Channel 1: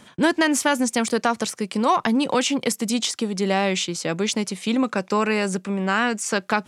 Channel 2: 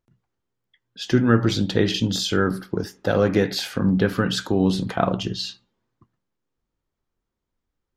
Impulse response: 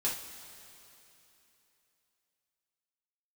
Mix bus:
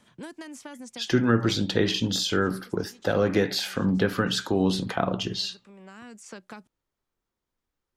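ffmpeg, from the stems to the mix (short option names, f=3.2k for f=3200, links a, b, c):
-filter_complex "[0:a]acrossover=split=360|6500[a][b][c];[a]acompressor=threshold=-31dB:ratio=4[d];[b]acompressor=threshold=-31dB:ratio=4[e];[c]acompressor=threshold=-41dB:ratio=4[f];[d][e][f]amix=inputs=3:normalize=0,volume=-12.5dB,asplit=3[g][h][i];[g]atrim=end=4.63,asetpts=PTS-STARTPTS,afade=t=out:st=4.626:d=0.004:c=hsin[j];[h]atrim=start=4.63:end=5.19,asetpts=PTS-STARTPTS,volume=0[k];[i]atrim=start=5.19,asetpts=PTS-STARTPTS,afade=t=in:d=0.004:c=hsin[l];[j][k][l]concat=n=3:v=0:a=1[m];[1:a]lowshelf=f=350:g=-6.5,acrossover=split=430[n][o];[o]acompressor=threshold=-24dB:ratio=6[p];[n][p]amix=inputs=2:normalize=0,volume=0.5dB,asplit=2[q][r];[r]apad=whole_len=294235[s];[m][s]sidechaincompress=threshold=-41dB:ratio=3:attack=16:release=653[t];[t][q]amix=inputs=2:normalize=0"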